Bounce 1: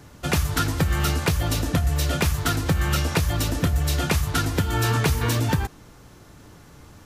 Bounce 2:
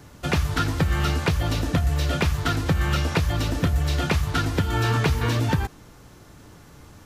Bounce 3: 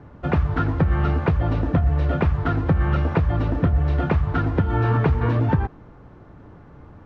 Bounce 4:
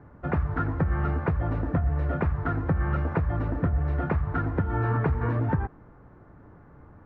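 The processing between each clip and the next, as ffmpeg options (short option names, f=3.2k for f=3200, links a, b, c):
-filter_complex "[0:a]acrossover=split=5200[a][b];[b]acompressor=threshold=-43dB:ratio=4:attack=1:release=60[c];[a][c]amix=inputs=2:normalize=0"
-af "lowpass=1.3k,volume=3dB"
-af "highshelf=f=2.4k:t=q:w=1.5:g=-8.5,volume=-6dB"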